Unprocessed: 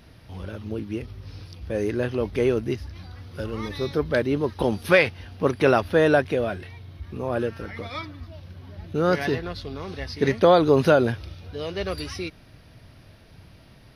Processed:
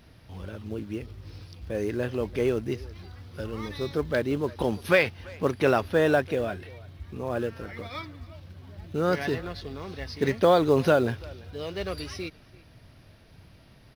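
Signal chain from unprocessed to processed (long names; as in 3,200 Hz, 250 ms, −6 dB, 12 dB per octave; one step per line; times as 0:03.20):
in parallel at −8 dB: floating-point word with a short mantissa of 2 bits
on the sum: far-end echo of a speakerphone 340 ms, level −21 dB
level −6.5 dB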